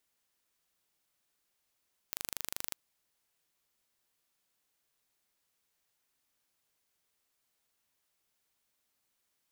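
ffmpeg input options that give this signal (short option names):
-f lavfi -i "aevalsrc='0.355*eq(mod(n,1743),0)':d=0.61:s=44100"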